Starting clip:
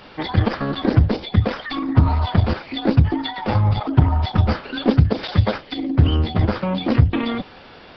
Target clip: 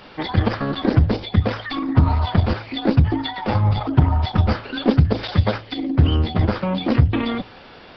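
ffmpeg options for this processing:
ffmpeg -i in.wav -af "bandreject=frequency=54.84:width_type=h:width=4,bandreject=frequency=109.68:width_type=h:width=4" out.wav

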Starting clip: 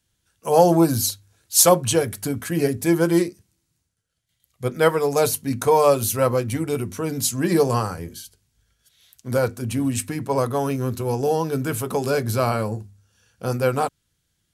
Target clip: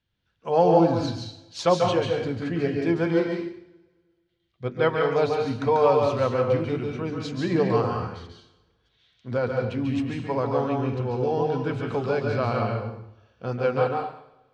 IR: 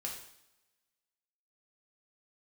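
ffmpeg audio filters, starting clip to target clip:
-filter_complex "[0:a]lowpass=frequency=4000:width=0.5412,lowpass=frequency=4000:width=1.3066,asplit=2[link_01][link_02];[1:a]atrim=start_sample=2205,adelay=140[link_03];[link_02][link_03]afir=irnorm=-1:irlink=0,volume=-1dB[link_04];[link_01][link_04]amix=inputs=2:normalize=0,volume=-5dB"

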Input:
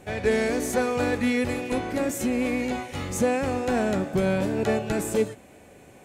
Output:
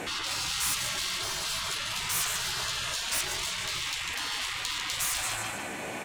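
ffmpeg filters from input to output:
ffmpeg -i in.wav -filter_complex "[0:a]aecho=1:1:148|296|444|592|740:0.355|0.16|0.0718|0.0323|0.0145,asplit=2[link_01][link_02];[link_02]highpass=frequency=720:poles=1,volume=26dB,asoftclip=type=tanh:threshold=-11dB[link_03];[link_01][link_03]amix=inputs=2:normalize=0,lowpass=frequency=4500:poles=1,volume=-6dB,afftfilt=real='re*lt(hypot(re,im),0.0891)':imag='im*lt(hypot(re,im),0.0891)':win_size=1024:overlap=0.75" out.wav

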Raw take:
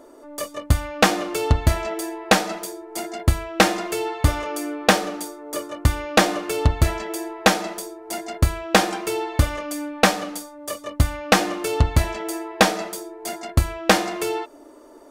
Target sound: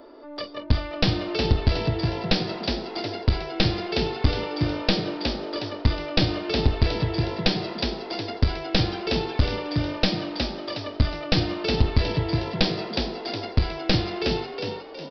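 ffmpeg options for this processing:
ffmpeg -i in.wav -filter_complex "[0:a]highshelf=frequency=4100:gain=8,aresample=11025,aeval=exprs='clip(val(0),-1,0.106)':channel_layout=same,aresample=44100,acrossover=split=450|3000[link_01][link_02][link_03];[link_02]acompressor=threshold=-35dB:ratio=6[link_04];[link_01][link_04][link_03]amix=inputs=3:normalize=0,asplit=6[link_05][link_06][link_07][link_08][link_09][link_10];[link_06]adelay=364,afreqshift=49,volume=-5dB[link_11];[link_07]adelay=728,afreqshift=98,volume=-12.3dB[link_12];[link_08]adelay=1092,afreqshift=147,volume=-19.7dB[link_13];[link_09]adelay=1456,afreqshift=196,volume=-27dB[link_14];[link_10]adelay=1820,afreqshift=245,volume=-34.3dB[link_15];[link_05][link_11][link_12][link_13][link_14][link_15]amix=inputs=6:normalize=0" out.wav

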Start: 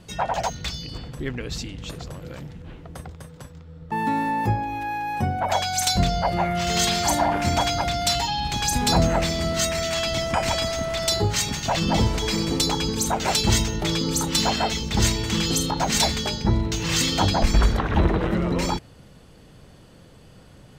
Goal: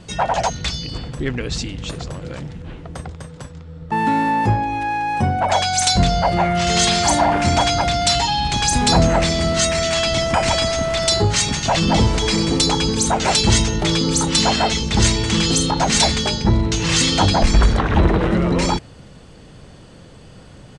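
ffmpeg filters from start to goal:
ffmpeg -i in.wav -filter_complex "[0:a]asplit=2[link_01][link_02];[link_02]volume=22dB,asoftclip=hard,volume=-22dB,volume=-6dB[link_03];[link_01][link_03]amix=inputs=2:normalize=0,aresample=22050,aresample=44100,volume=3dB" out.wav

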